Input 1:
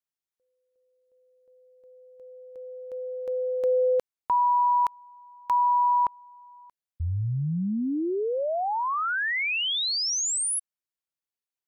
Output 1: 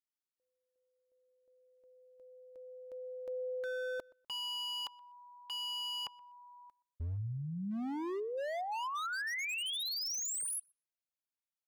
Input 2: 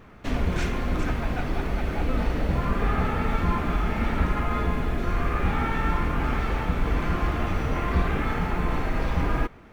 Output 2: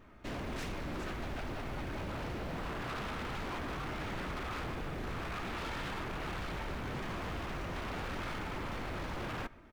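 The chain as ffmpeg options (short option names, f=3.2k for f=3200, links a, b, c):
-filter_complex "[0:a]aecho=1:1:3.2:0.33,aeval=exprs='0.0562*(abs(mod(val(0)/0.0562+3,4)-2)-1)':c=same,asplit=2[a][b];[b]adelay=124,lowpass=f=3.2k:p=1,volume=-23.5dB,asplit=2[c][d];[d]adelay=124,lowpass=f=3.2k:p=1,volume=0.22[e];[a][c][e]amix=inputs=3:normalize=0,volume=-9dB"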